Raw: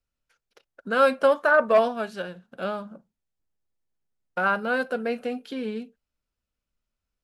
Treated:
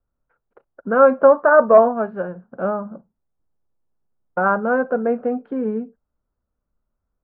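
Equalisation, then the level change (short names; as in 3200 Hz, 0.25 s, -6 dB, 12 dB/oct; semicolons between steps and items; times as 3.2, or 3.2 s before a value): LPF 1300 Hz 24 dB/oct; +8.0 dB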